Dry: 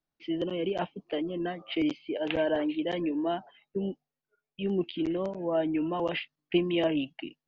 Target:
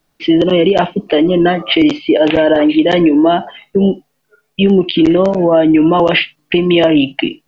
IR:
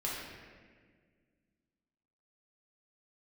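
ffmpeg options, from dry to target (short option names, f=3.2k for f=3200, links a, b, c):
-filter_complex "[0:a]acompressor=threshold=-30dB:ratio=6,asplit=2[a][b];[1:a]atrim=start_sample=2205,atrim=end_sample=3528[c];[b][c]afir=irnorm=-1:irlink=0,volume=-15.5dB[d];[a][d]amix=inputs=2:normalize=0,alimiter=level_in=24dB:limit=-1dB:release=50:level=0:latency=1,volume=-1dB"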